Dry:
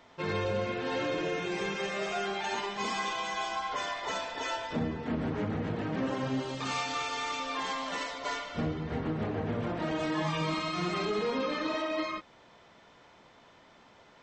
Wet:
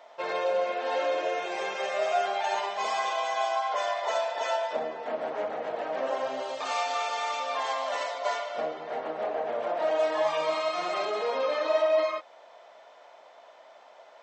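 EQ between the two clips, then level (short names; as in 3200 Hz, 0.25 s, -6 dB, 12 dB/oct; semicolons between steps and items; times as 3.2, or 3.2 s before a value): resonant high-pass 630 Hz, resonance Q 4.1; 0.0 dB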